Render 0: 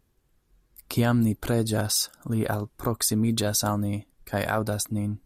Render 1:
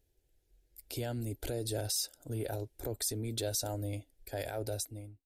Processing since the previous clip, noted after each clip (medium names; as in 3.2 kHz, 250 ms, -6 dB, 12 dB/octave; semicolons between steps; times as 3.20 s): fade out at the end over 0.60 s; peak limiter -19 dBFS, peak gain reduction 7 dB; static phaser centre 470 Hz, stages 4; trim -4 dB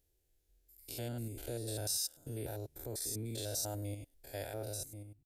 spectrogram pixelated in time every 100 ms; treble shelf 4.9 kHz +7.5 dB; trim -3 dB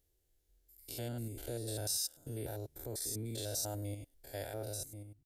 band-stop 2.5 kHz, Q 16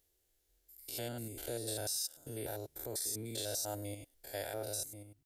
bass shelf 300 Hz -10.5 dB; peak limiter -32 dBFS, peak gain reduction 7.5 dB; trim +4.5 dB